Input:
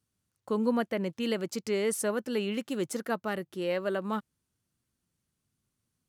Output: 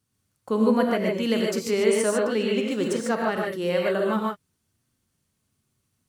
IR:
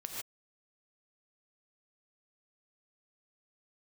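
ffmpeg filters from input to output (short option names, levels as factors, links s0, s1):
-filter_complex "[0:a]asettb=1/sr,asplit=3[s0][s1][s2];[s0]atrim=end=1.864[s3];[s1]atrim=start=1.86:end=3.36,asetpts=PTS-STARTPTS,afade=t=in:d=0.004:c=qsin,afade=t=out:st=1.496:d=0.004:c=qsin,equalizer=f=12000:w=1.9:g=-13[s4];[s2]atrim=start=3.356[s5];[s3][s4]acrossfade=d=0.004:c1=hsin:c2=qsin[s6];[s6][s5]acrossfade=d=0.004:c1=qsin:c2=hsin[s7];[1:a]atrim=start_sample=2205[s8];[s7][s8]afir=irnorm=-1:irlink=0,volume=2.51"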